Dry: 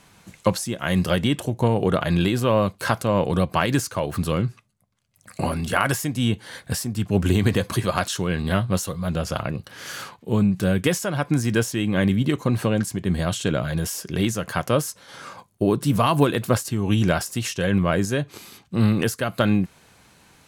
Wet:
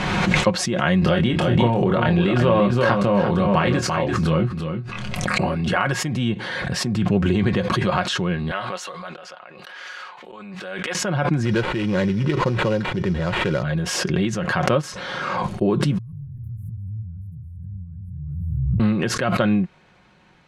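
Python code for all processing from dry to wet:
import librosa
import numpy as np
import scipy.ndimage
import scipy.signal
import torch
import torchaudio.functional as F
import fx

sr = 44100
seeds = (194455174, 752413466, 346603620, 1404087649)

y = fx.chain(x, sr, fx.doubler(ms=25.0, db=-6.0),
    fx.echo_single(ms=342, db=-7.0),
    fx.pre_swell(db_per_s=28.0), at=(0.99, 5.55))
y = fx.chain(y, sr, fx.highpass(hz=730.0, slope=12),
    fx.auto_swell(attack_ms=402.0),
    fx.sustainer(db_per_s=61.0), at=(8.51, 10.95))
y = fx.chain(y, sr, fx.sample_hold(seeds[0], rate_hz=5600.0, jitter_pct=20),
    fx.comb(ms=2.1, depth=0.41), at=(11.45, 13.63))
y = fx.chain(y, sr, fx.echo_pitch(ms=138, semitones=-2, count=3, db_per_echo=-6.0),
    fx.cheby2_bandstop(low_hz=320.0, high_hz=6400.0, order=4, stop_db=60), at=(15.98, 18.8))
y = scipy.signal.sosfilt(scipy.signal.butter(2, 3100.0, 'lowpass', fs=sr, output='sos'), y)
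y = y + 0.44 * np.pad(y, (int(5.5 * sr / 1000.0), 0))[:len(y)]
y = fx.pre_swell(y, sr, db_per_s=23.0)
y = y * librosa.db_to_amplitude(-1.0)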